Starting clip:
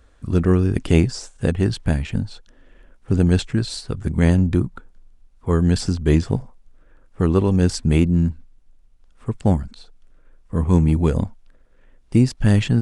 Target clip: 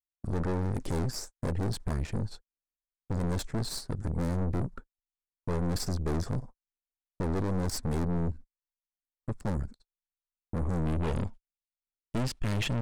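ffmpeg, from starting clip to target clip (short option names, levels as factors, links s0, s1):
-af "aeval=exprs='(tanh(25.1*val(0)+0.75)-tanh(0.75))/25.1':c=same,agate=range=0.00224:threshold=0.0112:ratio=16:detection=peak,asetnsamples=n=441:p=0,asendcmd='10.86 equalizer g 3',equalizer=f=2900:t=o:w=0.81:g=-10.5"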